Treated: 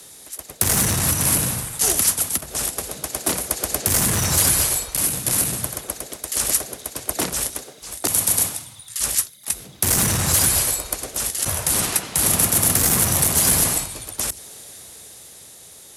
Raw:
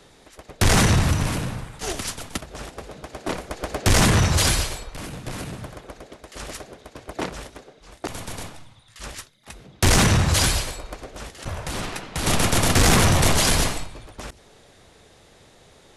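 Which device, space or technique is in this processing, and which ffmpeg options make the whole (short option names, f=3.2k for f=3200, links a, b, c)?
FM broadcast chain: -filter_complex "[0:a]highpass=56,dynaudnorm=f=150:g=17:m=5dB,acrossover=split=99|310|2200[a][b][c][d];[a]acompressor=threshold=-29dB:ratio=4[e];[b]acompressor=threshold=-23dB:ratio=4[f];[c]acompressor=threshold=-25dB:ratio=4[g];[d]acompressor=threshold=-34dB:ratio=4[h];[e][f][g][h]amix=inputs=4:normalize=0,aemphasis=mode=production:type=50fm,alimiter=limit=-12dB:level=0:latency=1:release=137,asoftclip=type=hard:threshold=-15.5dB,lowpass=f=15k:w=0.5412,lowpass=f=15k:w=1.3066,aemphasis=mode=production:type=50fm"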